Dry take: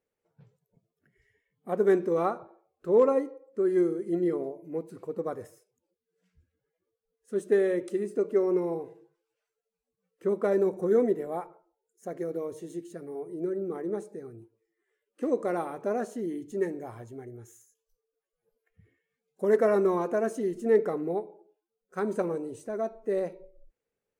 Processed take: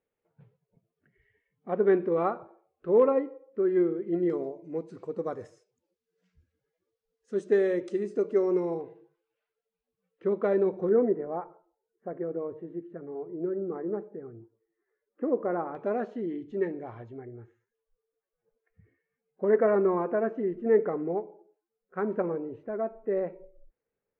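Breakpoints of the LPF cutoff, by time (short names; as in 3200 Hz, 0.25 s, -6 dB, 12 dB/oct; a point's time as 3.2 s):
LPF 24 dB/oct
3100 Hz
from 4.3 s 6600 Hz
from 8.81 s 3700 Hz
from 10.89 s 1700 Hz
from 15.75 s 3400 Hz
from 17.18 s 2200 Hz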